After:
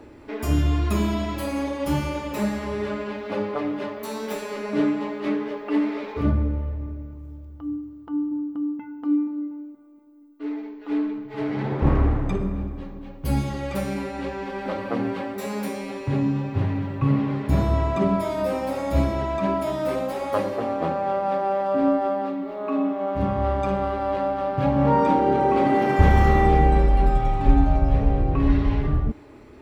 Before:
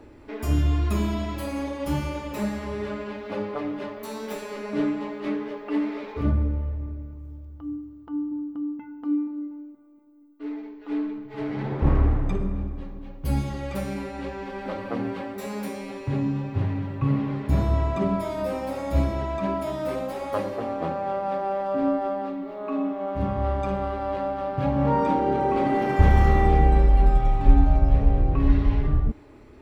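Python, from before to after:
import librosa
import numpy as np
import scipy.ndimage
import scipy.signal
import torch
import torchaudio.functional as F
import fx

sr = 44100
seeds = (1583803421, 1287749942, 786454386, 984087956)

y = fx.low_shelf(x, sr, hz=60.0, db=-8.0)
y = y * 10.0 ** (3.5 / 20.0)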